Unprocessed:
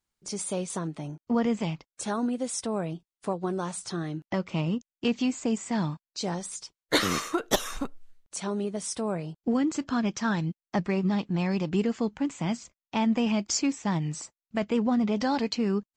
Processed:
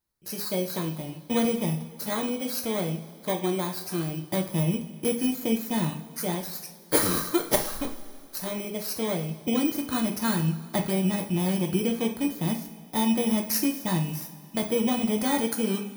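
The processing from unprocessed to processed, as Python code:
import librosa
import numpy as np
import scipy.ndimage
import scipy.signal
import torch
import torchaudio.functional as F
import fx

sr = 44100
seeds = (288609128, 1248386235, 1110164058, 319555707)

y = fx.bit_reversed(x, sr, seeds[0], block=16)
y = fx.rev_double_slope(y, sr, seeds[1], early_s=0.38, late_s=2.6, knee_db=-18, drr_db=2.0)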